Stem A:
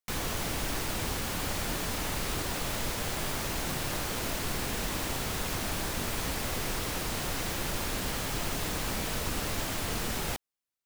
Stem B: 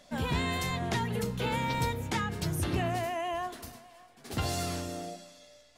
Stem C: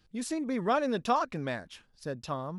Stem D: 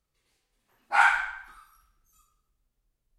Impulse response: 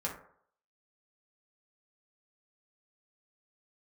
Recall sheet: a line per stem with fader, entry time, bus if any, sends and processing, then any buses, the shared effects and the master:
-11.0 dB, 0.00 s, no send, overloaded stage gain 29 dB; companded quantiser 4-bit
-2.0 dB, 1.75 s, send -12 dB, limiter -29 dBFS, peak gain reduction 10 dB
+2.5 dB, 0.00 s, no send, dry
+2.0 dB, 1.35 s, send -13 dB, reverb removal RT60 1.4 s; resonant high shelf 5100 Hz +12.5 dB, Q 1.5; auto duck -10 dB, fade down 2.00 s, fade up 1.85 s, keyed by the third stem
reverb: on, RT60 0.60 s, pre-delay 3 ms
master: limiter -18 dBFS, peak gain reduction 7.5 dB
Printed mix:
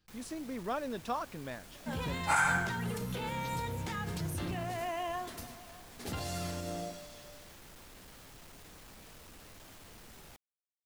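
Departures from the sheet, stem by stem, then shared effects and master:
stem A -11.0 dB -> -19.0 dB; stem C +2.5 dB -> -8.5 dB; stem D: missing reverb removal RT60 1.4 s

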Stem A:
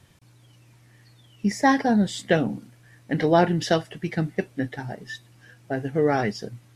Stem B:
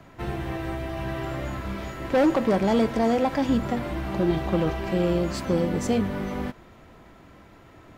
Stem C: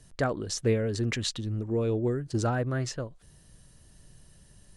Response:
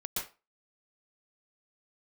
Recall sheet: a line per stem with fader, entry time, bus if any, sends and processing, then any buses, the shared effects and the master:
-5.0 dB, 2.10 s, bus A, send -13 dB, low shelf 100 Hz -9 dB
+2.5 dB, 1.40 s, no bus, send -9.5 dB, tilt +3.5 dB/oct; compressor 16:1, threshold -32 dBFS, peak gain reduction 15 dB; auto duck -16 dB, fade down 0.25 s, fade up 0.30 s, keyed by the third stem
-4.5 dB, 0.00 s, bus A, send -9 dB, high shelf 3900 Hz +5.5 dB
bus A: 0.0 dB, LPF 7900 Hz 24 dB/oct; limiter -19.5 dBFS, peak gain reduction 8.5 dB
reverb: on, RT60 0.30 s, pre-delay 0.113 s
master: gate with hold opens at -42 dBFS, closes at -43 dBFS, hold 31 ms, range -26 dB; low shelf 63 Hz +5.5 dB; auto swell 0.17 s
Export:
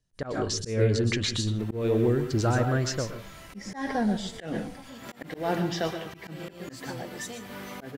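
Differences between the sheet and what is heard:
stem B +2.5 dB -> -5.5 dB; stem C -4.5 dB -> +2.5 dB; master: missing low shelf 63 Hz +5.5 dB

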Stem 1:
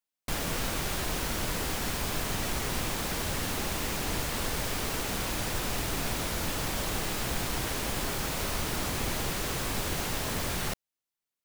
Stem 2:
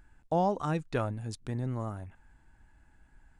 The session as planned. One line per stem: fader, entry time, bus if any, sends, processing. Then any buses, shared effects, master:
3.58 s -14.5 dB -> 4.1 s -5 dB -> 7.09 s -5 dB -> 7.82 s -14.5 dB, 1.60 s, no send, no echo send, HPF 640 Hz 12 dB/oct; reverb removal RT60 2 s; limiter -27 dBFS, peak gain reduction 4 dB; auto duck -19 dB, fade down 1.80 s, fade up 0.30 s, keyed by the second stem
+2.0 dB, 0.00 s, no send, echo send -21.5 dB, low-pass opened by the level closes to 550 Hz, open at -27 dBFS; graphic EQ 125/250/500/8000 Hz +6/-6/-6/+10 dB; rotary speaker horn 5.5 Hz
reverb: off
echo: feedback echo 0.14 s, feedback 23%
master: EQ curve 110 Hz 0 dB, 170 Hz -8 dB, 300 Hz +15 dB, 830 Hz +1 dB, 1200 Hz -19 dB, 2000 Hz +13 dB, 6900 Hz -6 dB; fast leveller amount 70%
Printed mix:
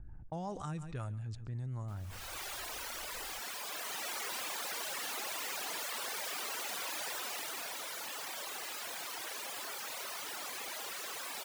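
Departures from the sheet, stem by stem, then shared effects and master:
stem 2 +2.0 dB -> -10.0 dB; master: missing EQ curve 110 Hz 0 dB, 170 Hz -8 dB, 300 Hz +15 dB, 830 Hz +1 dB, 1200 Hz -19 dB, 2000 Hz +13 dB, 6900 Hz -6 dB

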